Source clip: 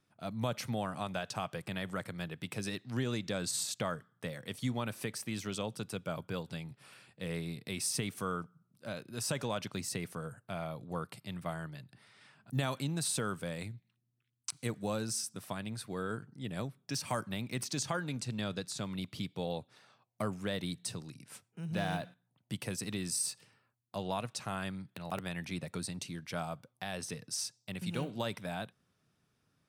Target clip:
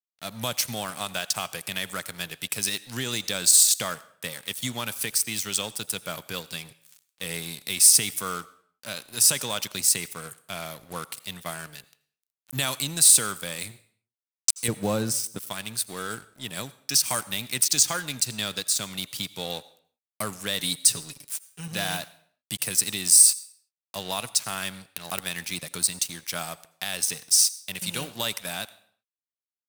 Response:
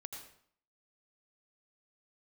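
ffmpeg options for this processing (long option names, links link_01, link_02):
-filter_complex "[0:a]asettb=1/sr,asplit=3[link_01][link_02][link_03];[link_01]atrim=end=14.684[link_04];[link_02]atrim=start=14.68:end=15.38,asetpts=PTS-STARTPTS,afade=type=in:duration=0.004:curve=qsin,afade=type=out:start_time=0.696:duration=0.004:curve=qsin,tiltshelf=frequency=1400:gain=9.5[link_05];[link_03]atrim=start=15.376[link_06];[link_04][link_05]acrossfade=duration=0.004:curve1=hsin:curve2=qsin[link_07];[link_07][link_06]acrossfade=duration=0.004:curve1=qsin:curve2=hsin,asettb=1/sr,asplit=3[link_08][link_09][link_10];[link_08]atrim=end=20.594[link_11];[link_09]atrim=start=20.59:end=21.68,asetpts=PTS-STARTPTS,afade=type=in:duration=0.004:curve=qsin,afade=type=out:start_time=1.086:duration=0.004:curve=qsin,aecho=1:1:7.1:0.78,atrim=end_sample=48069[link_12];[link_10]atrim=start=21.676[link_13];[link_11][link_12]acrossfade=duration=0.004:curve1=hsin:curve2=qsin[link_14];[link_14][link_13]acrossfade=duration=0.004:curve1=qsin:curve2=hsin,aeval=exprs='sgn(val(0))*max(abs(val(0))-0.00299,0)':channel_layout=same,crystalizer=i=9:c=0,asoftclip=type=tanh:threshold=-5dB,asplit=2[link_15][link_16];[1:a]atrim=start_sample=2205,afade=type=out:start_time=0.44:duration=0.01,atrim=end_sample=19845,lowshelf=frequency=210:gain=-9.5[link_17];[link_16][link_17]afir=irnorm=-1:irlink=0,volume=-9.5dB[link_18];[link_15][link_18]amix=inputs=2:normalize=0"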